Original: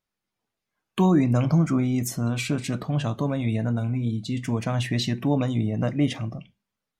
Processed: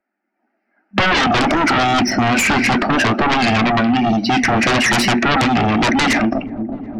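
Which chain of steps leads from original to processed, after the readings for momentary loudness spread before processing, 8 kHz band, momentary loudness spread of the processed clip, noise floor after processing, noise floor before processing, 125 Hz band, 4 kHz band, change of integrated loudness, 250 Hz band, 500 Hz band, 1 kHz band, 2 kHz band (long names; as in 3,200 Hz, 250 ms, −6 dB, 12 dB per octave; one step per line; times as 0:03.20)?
7 LU, +12.5 dB, 3 LU, −74 dBFS, below −85 dBFS, 0.0 dB, +16.0 dB, +10.0 dB, +7.5 dB, +10.0 dB, +19.5 dB, +22.0 dB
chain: low-pass that shuts in the quiet parts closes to 1,700 Hz, open at −19.5 dBFS
brick-wall band-pass 200–5,900 Hz
noise gate with hold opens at −30 dBFS
dynamic equaliser 2,000 Hz, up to +6 dB, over −48 dBFS, Q 0.97
automatic gain control gain up to 9 dB
in parallel at −6 dB: soft clipping −13 dBFS, distortion −14 dB
on the sum: phaser with its sweep stopped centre 710 Hz, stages 8
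sine wavefolder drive 17 dB, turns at −3 dBFS
on a send: delay with a low-pass on its return 366 ms, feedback 34%, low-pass 470 Hz, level −12 dB
on the sum: multiband upward and downward compressor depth 70%
level −9 dB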